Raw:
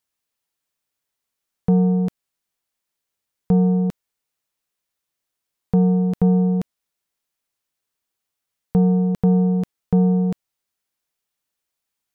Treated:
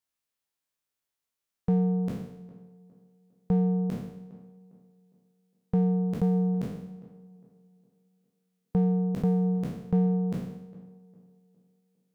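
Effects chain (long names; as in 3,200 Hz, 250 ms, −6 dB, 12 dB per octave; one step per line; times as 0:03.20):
peak hold with a decay on every bin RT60 0.78 s
on a send: tape delay 407 ms, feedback 45%, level −16 dB, low-pass 1,100 Hz
on the sum: level −8 dB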